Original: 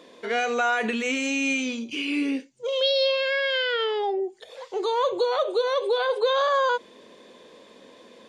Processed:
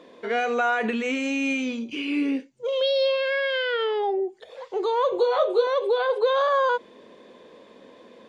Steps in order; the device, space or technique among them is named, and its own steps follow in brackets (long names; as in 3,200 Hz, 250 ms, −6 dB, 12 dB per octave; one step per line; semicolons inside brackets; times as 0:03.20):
0:05.10–0:05.67: double-tracking delay 19 ms −3.5 dB
through cloth (high-shelf EQ 3,600 Hz −12 dB)
level +1.5 dB